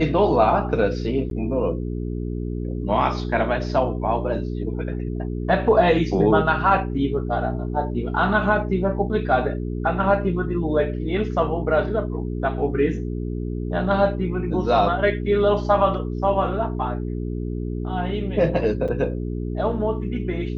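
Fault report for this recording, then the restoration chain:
mains hum 60 Hz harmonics 7 −27 dBFS
0:01.30–0:01.31: drop-out 12 ms
0:18.88–0:18.89: drop-out 5.9 ms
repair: hum removal 60 Hz, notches 7
repair the gap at 0:01.30, 12 ms
repair the gap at 0:18.88, 5.9 ms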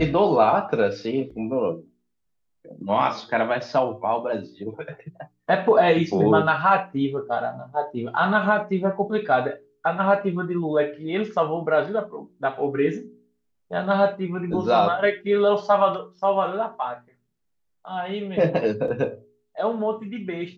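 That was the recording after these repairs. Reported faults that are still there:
none of them is left

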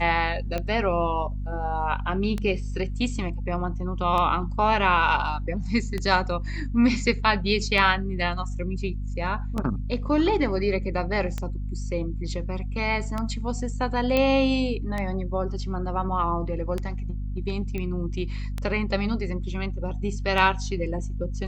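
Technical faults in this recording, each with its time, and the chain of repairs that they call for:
mains hum 50 Hz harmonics 5 −30 dBFS
scratch tick 33 1/3 rpm −15 dBFS
0:14.17: click −10 dBFS
0:17.78: click −19 dBFS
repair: click removal
hum removal 50 Hz, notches 5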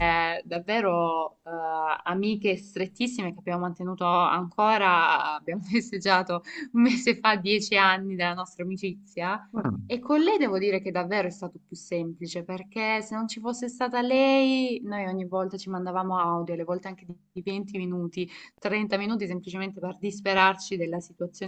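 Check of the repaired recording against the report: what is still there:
none of them is left

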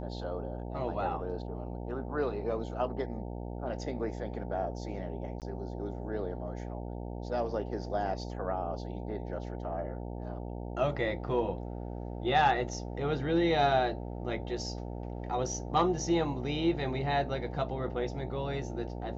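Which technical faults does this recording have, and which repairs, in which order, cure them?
mains buzz 60 Hz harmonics 15 −39 dBFS
0:05.40–0:05.42: drop-out 18 ms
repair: hum removal 60 Hz, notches 15
repair the gap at 0:05.40, 18 ms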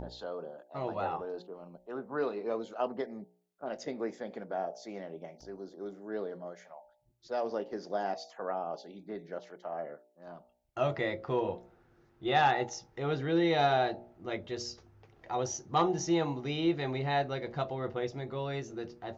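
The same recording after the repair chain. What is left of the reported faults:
none of them is left

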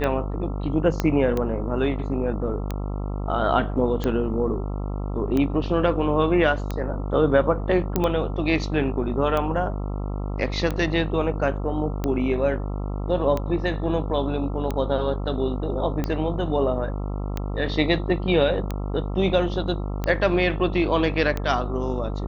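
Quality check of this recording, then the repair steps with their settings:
mains buzz 50 Hz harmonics 27 −28 dBFS
scratch tick 45 rpm −13 dBFS
0:01.00: click −9 dBFS
0:07.96: click −7 dBFS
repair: click removal
hum removal 50 Hz, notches 27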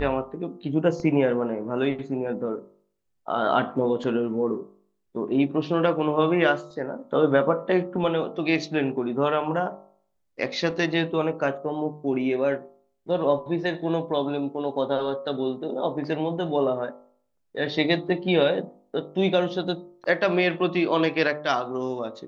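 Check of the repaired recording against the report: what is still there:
0:01.00: click

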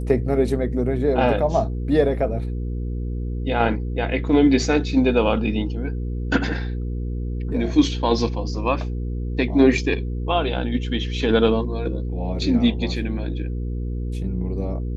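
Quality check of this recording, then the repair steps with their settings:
mains hum 60 Hz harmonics 8 −26 dBFS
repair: hum removal 60 Hz, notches 8

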